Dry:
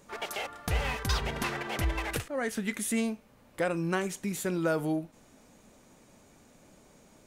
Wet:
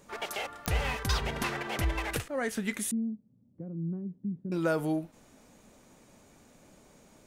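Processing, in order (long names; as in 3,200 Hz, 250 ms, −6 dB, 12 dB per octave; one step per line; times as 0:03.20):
0:02.91–0:04.52: flat-topped band-pass 160 Hz, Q 1.1
digital clicks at 0:00.66, −14 dBFS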